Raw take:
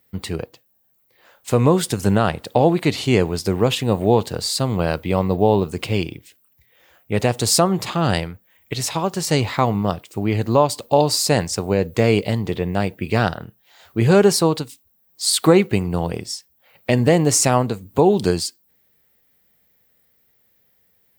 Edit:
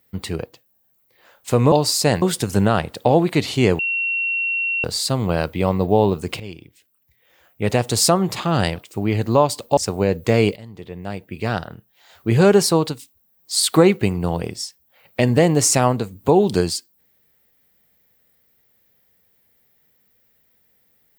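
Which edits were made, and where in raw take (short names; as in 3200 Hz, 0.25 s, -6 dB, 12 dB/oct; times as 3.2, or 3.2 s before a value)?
3.29–4.34 bleep 2730 Hz -19 dBFS
5.9–7.23 fade in, from -15.5 dB
8.26–9.96 cut
10.97–11.47 move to 1.72
12.26–13.99 fade in, from -21 dB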